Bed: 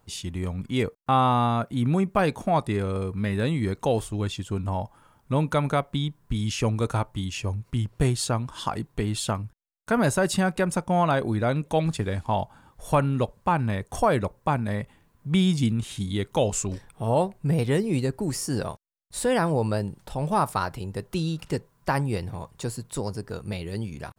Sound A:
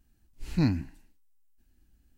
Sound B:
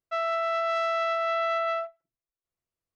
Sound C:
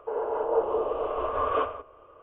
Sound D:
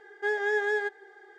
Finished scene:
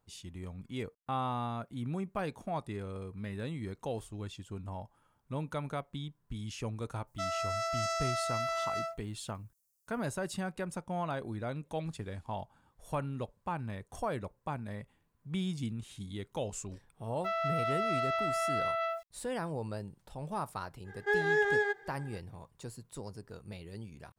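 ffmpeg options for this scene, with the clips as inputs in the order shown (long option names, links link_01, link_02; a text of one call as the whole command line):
ffmpeg -i bed.wav -i cue0.wav -i cue1.wav -i cue2.wav -i cue3.wav -filter_complex "[2:a]asplit=2[link_01][link_02];[0:a]volume=-13.5dB[link_03];[link_01]aexciter=amount=9.7:drive=7.5:freq=4900[link_04];[link_02]aeval=exprs='val(0)*gte(abs(val(0)),0.00422)':channel_layout=same[link_05];[link_04]atrim=end=2.95,asetpts=PTS-STARTPTS,volume=-7.5dB,afade=type=in:duration=0.004:curve=hsin,afade=type=out:start_time=2.946:duration=0.004:curve=hsin,adelay=7070[link_06];[link_05]atrim=end=2.95,asetpts=PTS-STARTPTS,volume=-5.5dB,afade=type=in:duration=0.004:curve=hsin,afade=type=out:start_time=2.946:duration=0.004:curve=hsin,adelay=17130[link_07];[4:a]atrim=end=1.38,asetpts=PTS-STARTPTS,volume=-1dB,afade=type=in:duration=0.05,afade=type=out:start_time=1.33:duration=0.05,adelay=919044S[link_08];[link_03][link_06][link_07][link_08]amix=inputs=4:normalize=0" out.wav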